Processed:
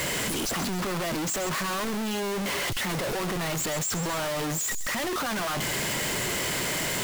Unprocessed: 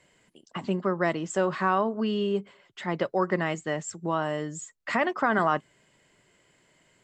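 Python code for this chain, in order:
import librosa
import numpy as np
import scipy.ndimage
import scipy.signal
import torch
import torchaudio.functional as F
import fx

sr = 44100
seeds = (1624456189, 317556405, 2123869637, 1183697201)

p1 = np.sign(x) * np.sqrt(np.mean(np.square(x)))
p2 = fx.echo_wet_highpass(p1, sr, ms=133, feedback_pct=31, hz=4800.0, wet_db=-7.0)
p3 = (np.mod(10.0 ** (35.5 / 20.0) * p2 + 1.0, 2.0) - 1.0) / 10.0 ** (35.5 / 20.0)
y = p2 + (p3 * 10.0 ** (-8.0 / 20.0))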